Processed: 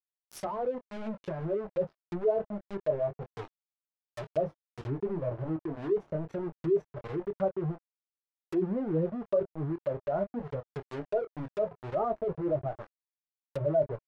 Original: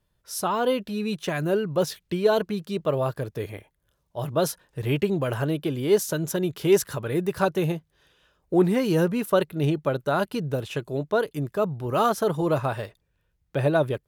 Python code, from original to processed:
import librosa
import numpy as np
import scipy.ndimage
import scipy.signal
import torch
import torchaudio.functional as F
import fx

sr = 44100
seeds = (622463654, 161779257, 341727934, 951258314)

y = fx.spec_expand(x, sr, power=2.1)
y = np.where(np.abs(y) >= 10.0 ** (-27.0 / 20.0), y, 0.0)
y = fx.dynamic_eq(y, sr, hz=630.0, q=5.1, threshold_db=-38.0, ratio=4.0, max_db=6)
y = fx.chorus_voices(y, sr, voices=4, hz=0.23, base_ms=22, depth_ms=4.1, mix_pct=30)
y = fx.env_lowpass_down(y, sr, base_hz=990.0, full_db=-25.0)
y = y * 10.0 ** (-5.5 / 20.0)